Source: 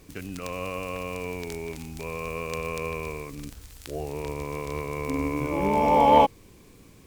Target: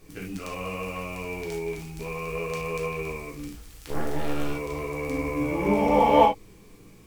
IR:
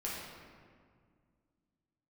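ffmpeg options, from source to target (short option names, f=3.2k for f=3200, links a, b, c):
-filter_complex "[0:a]asettb=1/sr,asplit=3[a][b][c];[a]atrim=end=3.894[d];[b]atrim=start=3.89:end=4.52,asetpts=PTS-STARTPTS,afade=t=in:d=0.004:c=qsin,afade=t=out:st=0.626:d=0.004:c=qsin,aeval=exprs='0.112*(cos(1*acos(clip(val(0)/0.112,-1,1)))-cos(1*PI/2))+0.0355*(cos(6*acos(clip(val(0)/0.112,-1,1)))-cos(6*PI/2))':c=same[e];[c]atrim=start=4.516[f];[d][e]acrossfade=d=0.004:c1=hsin:c2=qsin[g];[g][f]acrossfade=d=0.004:c1=qsin:c2=hsin[h];[1:a]atrim=start_sample=2205,atrim=end_sample=3528[i];[h][i]afir=irnorm=-1:irlink=0"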